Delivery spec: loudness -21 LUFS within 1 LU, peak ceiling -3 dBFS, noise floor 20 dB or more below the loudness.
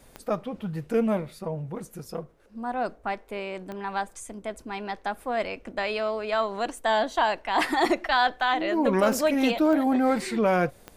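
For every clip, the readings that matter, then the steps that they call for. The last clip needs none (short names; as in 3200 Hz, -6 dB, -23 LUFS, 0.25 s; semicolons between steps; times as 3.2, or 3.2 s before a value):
clicks 5; loudness -26.5 LUFS; peak -11.0 dBFS; loudness target -21.0 LUFS
-> de-click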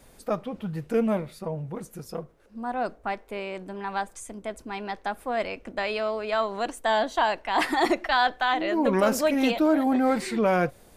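clicks 0; loudness -26.5 LUFS; peak -11.0 dBFS; loudness target -21.0 LUFS
-> gain +5.5 dB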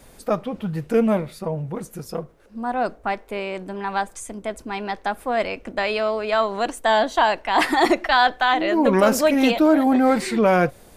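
loudness -21.0 LUFS; peak -5.5 dBFS; noise floor -50 dBFS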